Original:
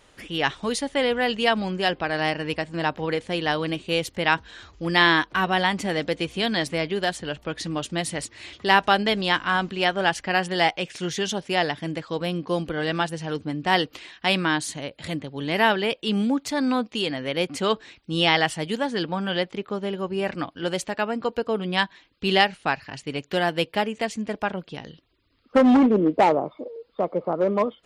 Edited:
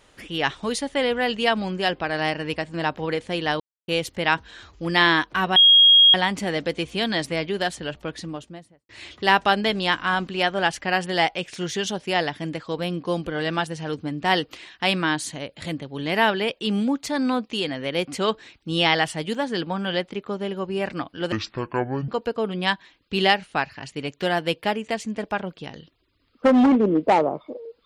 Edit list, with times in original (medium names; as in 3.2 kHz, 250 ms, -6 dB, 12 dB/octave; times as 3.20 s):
3.60–3.88 s: mute
5.56 s: add tone 3.27 kHz -9.5 dBFS 0.58 s
7.32–8.31 s: studio fade out
20.74–21.19 s: speed 59%